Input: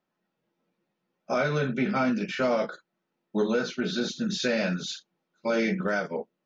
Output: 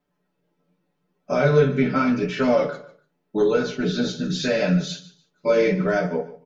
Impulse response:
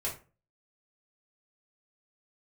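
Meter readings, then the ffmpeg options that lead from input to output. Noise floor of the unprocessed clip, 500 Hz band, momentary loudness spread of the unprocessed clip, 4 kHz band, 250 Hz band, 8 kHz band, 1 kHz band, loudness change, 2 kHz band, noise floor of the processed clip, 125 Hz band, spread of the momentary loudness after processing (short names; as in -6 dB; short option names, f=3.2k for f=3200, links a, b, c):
-82 dBFS, +8.0 dB, 9 LU, +2.0 dB, +5.5 dB, n/a, +4.0 dB, +6.5 dB, +2.5 dB, -74 dBFS, +9.0 dB, 10 LU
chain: -filter_complex "[0:a]lowshelf=f=460:g=8,aecho=1:1:6.9:0.89,flanger=delay=3.8:depth=9.2:regen=58:speed=0.81:shape=triangular,aecho=1:1:147|294:0.141|0.0339,asplit=2[a][b];[1:a]atrim=start_sample=2205[c];[b][c]afir=irnorm=-1:irlink=0,volume=-8dB[d];[a][d]amix=inputs=2:normalize=0,volume=1.5dB"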